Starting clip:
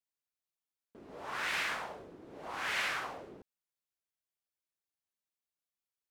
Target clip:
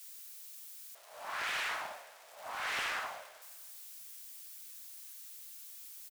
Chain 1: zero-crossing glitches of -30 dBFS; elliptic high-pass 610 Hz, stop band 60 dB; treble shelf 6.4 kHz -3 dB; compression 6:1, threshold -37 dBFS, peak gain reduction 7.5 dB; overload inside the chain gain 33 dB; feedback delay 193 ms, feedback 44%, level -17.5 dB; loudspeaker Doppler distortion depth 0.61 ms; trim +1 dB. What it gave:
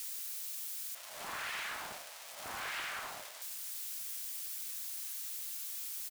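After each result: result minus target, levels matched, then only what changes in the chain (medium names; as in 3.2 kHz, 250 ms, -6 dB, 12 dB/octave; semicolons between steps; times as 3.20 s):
compression: peak gain reduction +7.5 dB; zero-crossing glitches: distortion +11 dB
remove: compression 6:1, threshold -37 dBFS, peak gain reduction 7.5 dB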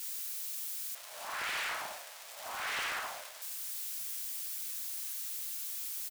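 zero-crossing glitches: distortion +11 dB
change: zero-crossing glitches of -41 dBFS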